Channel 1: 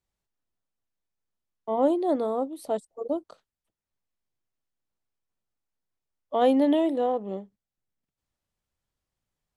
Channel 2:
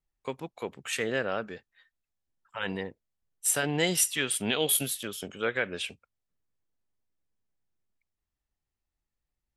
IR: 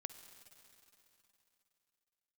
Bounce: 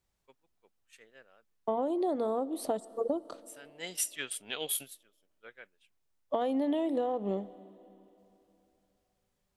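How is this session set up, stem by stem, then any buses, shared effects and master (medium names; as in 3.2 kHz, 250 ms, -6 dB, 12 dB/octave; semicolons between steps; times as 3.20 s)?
+2.0 dB, 0.00 s, send -6 dB, compression 4:1, threshold -26 dBFS, peak gain reduction 9 dB
-4.0 dB, 0.00 s, no send, bass shelf 300 Hz -10 dB; expander -24 dBFS; auto duck -23 dB, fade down 1.70 s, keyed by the first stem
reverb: on, RT60 3.3 s, pre-delay 46 ms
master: compression 6:1, threshold -27 dBFS, peak gain reduction 8 dB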